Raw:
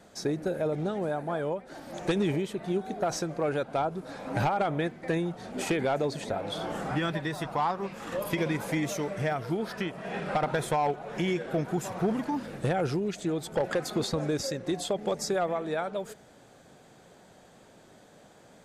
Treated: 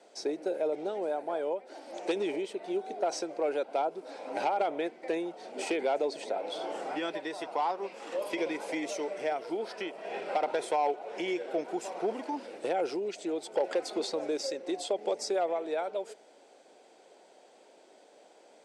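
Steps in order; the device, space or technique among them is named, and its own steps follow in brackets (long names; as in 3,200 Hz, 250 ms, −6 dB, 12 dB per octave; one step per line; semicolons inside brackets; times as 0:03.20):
phone speaker on a table (loudspeaker in its box 340–8,700 Hz, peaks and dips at 1,200 Hz −9 dB, 1,700 Hz −8 dB, 3,600 Hz −4 dB, 6,800 Hz −6 dB)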